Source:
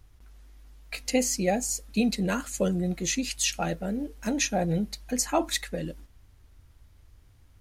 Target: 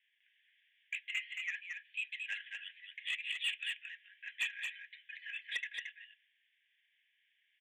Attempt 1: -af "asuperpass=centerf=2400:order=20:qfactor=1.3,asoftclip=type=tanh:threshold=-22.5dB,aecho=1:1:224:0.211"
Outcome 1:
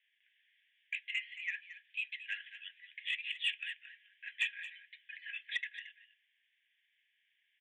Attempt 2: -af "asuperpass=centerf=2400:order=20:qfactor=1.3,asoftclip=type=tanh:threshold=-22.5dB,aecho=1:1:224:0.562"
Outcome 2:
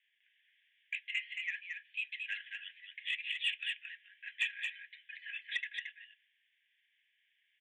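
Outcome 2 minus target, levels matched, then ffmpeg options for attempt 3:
soft clip: distortion -8 dB
-af "asuperpass=centerf=2400:order=20:qfactor=1.3,asoftclip=type=tanh:threshold=-28.5dB,aecho=1:1:224:0.562"

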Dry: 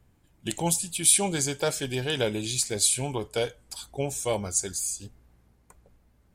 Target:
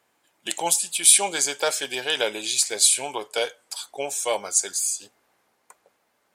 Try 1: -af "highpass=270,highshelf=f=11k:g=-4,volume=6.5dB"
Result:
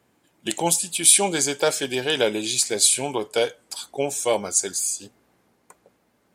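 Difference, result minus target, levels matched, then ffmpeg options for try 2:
250 Hz band +10.0 dB
-af "highpass=620,highshelf=f=11k:g=-4,volume=6.5dB"

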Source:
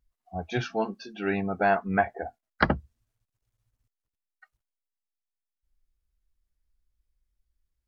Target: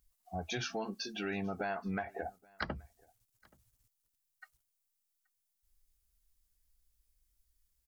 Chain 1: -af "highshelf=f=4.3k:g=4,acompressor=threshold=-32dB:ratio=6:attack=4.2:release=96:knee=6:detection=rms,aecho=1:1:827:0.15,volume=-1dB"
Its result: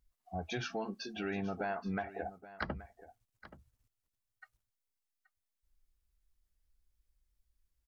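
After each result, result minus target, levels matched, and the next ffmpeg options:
echo-to-direct +11 dB; 8000 Hz band -5.5 dB
-af "highshelf=f=4.3k:g=4,acompressor=threshold=-32dB:ratio=6:attack=4.2:release=96:knee=6:detection=rms,aecho=1:1:827:0.0422,volume=-1dB"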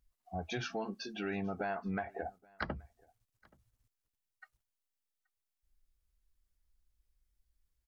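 8000 Hz band -5.5 dB
-af "highshelf=f=4.3k:g=16,acompressor=threshold=-32dB:ratio=6:attack=4.2:release=96:knee=6:detection=rms,aecho=1:1:827:0.0422,volume=-1dB"

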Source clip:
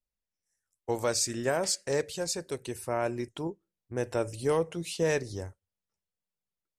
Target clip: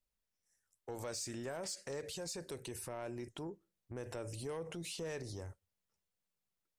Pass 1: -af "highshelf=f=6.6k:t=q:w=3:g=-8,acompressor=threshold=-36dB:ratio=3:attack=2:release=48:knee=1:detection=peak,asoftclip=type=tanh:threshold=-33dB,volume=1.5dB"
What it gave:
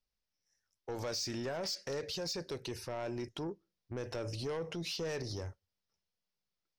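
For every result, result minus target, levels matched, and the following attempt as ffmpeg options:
compressor: peak gain reduction -6 dB; 8000 Hz band -4.5 dB
-af "highshelf=f=6.6k:t=q:w=3:g=-8,acompressor=threshold=-45dB:ratio=3:attack=2:release=48:knee=1:detection=peak,asoftclip=type=tanh:threshold=-33dB,volume=1.5dB"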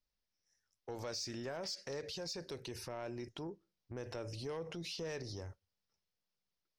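8000 Hz band -4.5 dB
-af "acompressor=threshold=-45dB:ratio=3:attack=2:release=48:knee=1:detection=peak,asoftclip=type=tanh:threshold=-33dB,volume=1.5dB"

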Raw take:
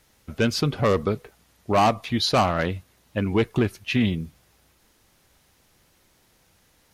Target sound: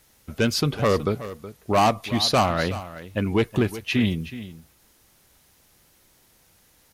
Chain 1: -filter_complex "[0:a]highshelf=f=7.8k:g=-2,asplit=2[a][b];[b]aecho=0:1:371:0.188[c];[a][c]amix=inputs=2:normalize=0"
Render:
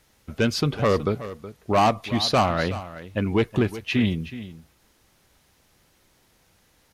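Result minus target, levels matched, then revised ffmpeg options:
8000 Hz band -3.5 dB
-filter_complex "[0:a]highshelf=f=7.8k:g=8,asplit=2[a][b];[b]aecho=0:1:371:0.188[c];[a][c]amix=inputs=2:normalize=0"

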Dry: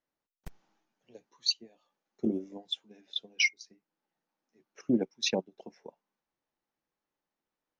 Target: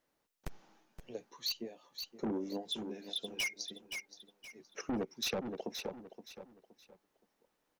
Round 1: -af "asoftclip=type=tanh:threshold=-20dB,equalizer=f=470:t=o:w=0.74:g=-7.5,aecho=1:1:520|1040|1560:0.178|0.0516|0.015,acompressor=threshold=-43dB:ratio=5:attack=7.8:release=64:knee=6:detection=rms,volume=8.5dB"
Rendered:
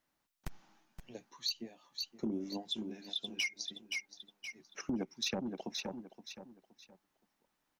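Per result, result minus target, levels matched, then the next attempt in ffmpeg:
soft clip: distortion -11 dB; 500 Hz band -4.0 dB
-af "asoftclip=type=tanh:threshold=-31.5dB,equalizer=f=470:t=o:w=0.74:g=-7.5,aecho=1:1:520|1040|1560:0.178|0.0516|0.015,acompressor=threshold=-43dB:ratio=5:attack=7.8:release=64:knee=6:detection=rms,volume=8.5dB"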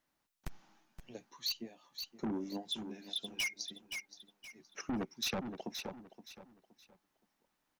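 500 Hz band -4.5 dB
-af "asoftclip=type=tanh:threshold=-31.5dB,equalizer=f=470:t=o:w=0.74:g=2.5,aecho=1:1:520|1040|1560:0.178|0.0516|0.015,acompressor=threshold=-43dB:ratio=5:attack=7.8:release=64:knee=6:detection=rms,volume=8.5dB"

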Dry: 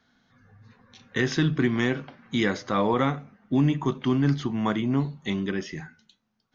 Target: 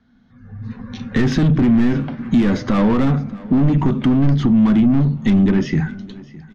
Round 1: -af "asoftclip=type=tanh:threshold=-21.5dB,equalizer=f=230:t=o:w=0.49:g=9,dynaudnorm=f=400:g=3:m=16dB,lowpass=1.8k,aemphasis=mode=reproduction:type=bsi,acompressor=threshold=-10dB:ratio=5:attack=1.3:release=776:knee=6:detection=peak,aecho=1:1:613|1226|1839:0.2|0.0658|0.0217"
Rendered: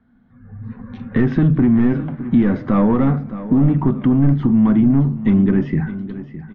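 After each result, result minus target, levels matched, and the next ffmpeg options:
echo-to-direct +6.5 dB; 2000 Hz band -3.5 dB; soft clip: distortion -5 dB
-af "asoftclip=type=tanh:threshold=-21.5dB,equalizer=f=230:t=o:w=0.49:g=9,dynaudnorm=f=400:g=3:m=16dB,lowpass=1.8k,aemphasis=mode=reproduction:type=bsi,acompressor=threshold=-10dB:ratio=5:attack=1.3:release=776:knee=6:detection=peak,aecho=1:1:613|1226|1839:0.0944|0.0312|0.0103"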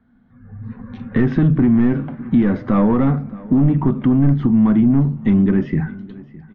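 2000 Hz band -4.0 dB; soft clip: distortion -5 dB
-af "asoftclip=type=tanh:threshold=-21.5dB,equalizer=f=230:t=o:w=0.49:g=9,dynaudnorm=f=400:g=3:m=16dB,aemphasis=mode=reproduction:type=bsi,acompressor=threshold=-10dB:ratio=5:attack=1.3:release=776:knee=6:detection=peak,aecho=1:1:613|1226|1839:0.0944|0.0312|0.0103"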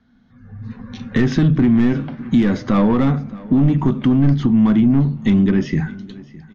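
soft clip: distortion -5 dB
-af "asoftclip=type=tanh:threshold=-28.5dB,equalizer=f=230:t=o:w=0.49:g=9,dynaudnorm=f=400:g=3:m=16dB,aemphasis=mode=reproduction:type=bsi,acompressor=threshold=-10dB:ratio=5:attack=1.3:release=776:knee=6:detection=peak,aecho=1:1:613|1226|1839:0.0944|0.0312|0.0103"

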